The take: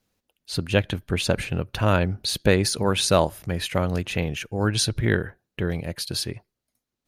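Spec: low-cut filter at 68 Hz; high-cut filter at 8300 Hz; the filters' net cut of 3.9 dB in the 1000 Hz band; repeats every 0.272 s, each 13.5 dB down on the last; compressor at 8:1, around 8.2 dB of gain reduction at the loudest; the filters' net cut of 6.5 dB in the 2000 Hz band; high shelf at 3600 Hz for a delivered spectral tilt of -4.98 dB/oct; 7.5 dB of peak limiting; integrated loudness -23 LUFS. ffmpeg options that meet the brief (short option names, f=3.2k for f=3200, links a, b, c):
-af "highpass=68,lowpass=8.3k,equalizer=f=1k:t=o:g=-3,equalizer=f=2k:t=o:g=-5.5,highshelf=f=3.6k:g=-7.5,acompressor=threshold=-23dB:ratio=8,alimiter=limit=-20dB:level=0:latency=1,aecho=1:1:272|544:0.211|0.0444,volume=10dB"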